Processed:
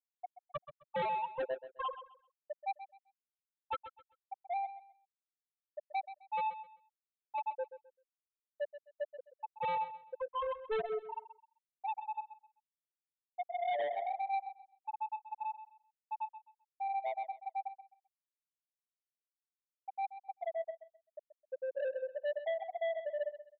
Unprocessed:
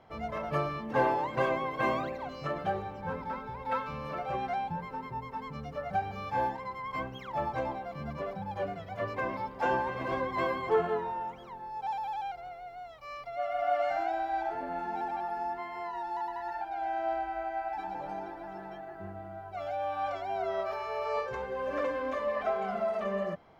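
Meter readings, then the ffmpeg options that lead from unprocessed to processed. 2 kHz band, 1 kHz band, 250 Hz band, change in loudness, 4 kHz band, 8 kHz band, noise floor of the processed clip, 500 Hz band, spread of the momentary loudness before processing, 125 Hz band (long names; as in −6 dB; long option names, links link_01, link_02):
−11.0 dB, −6.5 dB, below −20 dB, −6.0 dB, −7.0 dB, can't be measured, below −85 dBFS, −7.0 dB, 10 LU, below −20 dB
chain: -af "afftfilt=real='re*gte(hypot(re,im),0.251)':imag='im*gte(hypot(re,im),0.251)':win_size=1024:overlap=0.75,highpass=210,aresample=8000,asoftclip=type=tanh:threshold=-35dB,aresample=44100,aecho=1:1:130|260|390:0.237|0.0593|0.0148,volume=3.5dB"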